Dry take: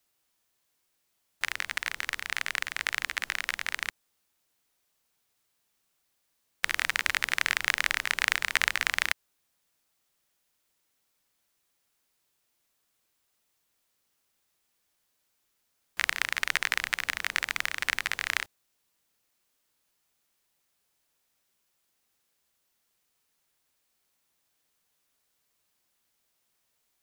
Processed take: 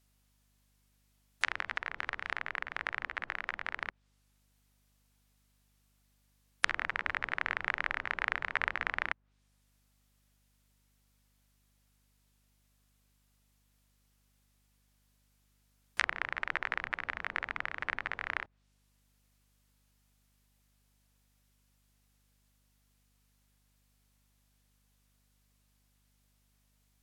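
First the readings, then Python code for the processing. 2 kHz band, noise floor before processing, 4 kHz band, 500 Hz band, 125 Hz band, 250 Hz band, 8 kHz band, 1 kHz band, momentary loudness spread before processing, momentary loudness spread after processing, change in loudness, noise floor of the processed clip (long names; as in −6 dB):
−5.5 dB, −76 dBFS, −12.5 dB, 0.0 dB, can't be measured, −1.0 dB, −17.5 dB, −1.0 dB, 7 LU, 5 LU, −6.5 dB, −72 dBFS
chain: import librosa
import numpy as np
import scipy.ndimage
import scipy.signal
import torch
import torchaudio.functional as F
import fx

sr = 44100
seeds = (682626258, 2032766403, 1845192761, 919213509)

y = fx.spec_gate(x, sr, threshold_db=-25, keep='strong')
y = fx.env_lowpass_down(y, sr, base_hz=1400.0, full_db=-30.5)
y = fx.add_hum(y, sr, base_hz=50, snr_db=31)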